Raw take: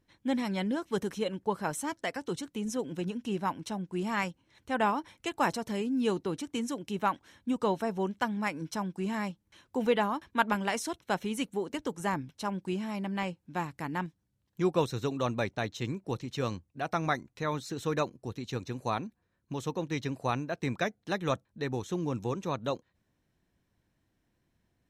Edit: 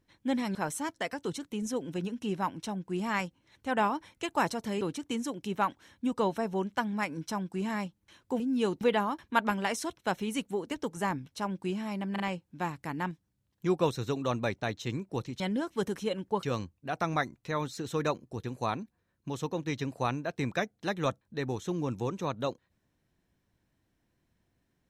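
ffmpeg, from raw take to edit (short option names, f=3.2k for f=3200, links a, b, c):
-filter_complex "[0:a]asplit=10[a][b][c][d][e][f][g][h][i][j];[a]atrim=end=0.552[k];[b]atrim=start=1.578:end=5.842[l];[c]atrim=start=6.248:end=9.842[m];[d]atrim=start=5.838:end=6.252[n];[e]atrim=start=9.838:end=13.192[o];[f]atrim=start=13.148:end=13.192[p];[g]atrim=start=13.148:end=16.352[q];[h]atrim=start=0.548:end=1.582[r];[i]atrim=start=16.348:end=18.362[s];[j]atrim=start=18.678[t];[k][l]acrossfade=d=0.004:c1=hsin:c2=hsin[u];[u][m]acrossfade=d=0.004:c1=hsin:c2=hsin[v];[v][n]acrossfade=d=0.004:c1=hsin:c2=hsin[w];[w][o]acrossfade=d=0.004:c1=hsin:c2=hsin[x];[x][p]acrossfade=d=0.004:c1=hsin:c2=hsin[y];[y][q]acrossfade=d=0.004:c1=hsin:c2=hsin[z];[z][r]acrossfade=d=0.004:c1=hsin:c2=hsin[aa];[aa][s]acrossfade=d=0.004:c1=hsin:c2=hsin[ab];[ab][t]acrossfade=d=0.004:c1=hsin:c2=hsin"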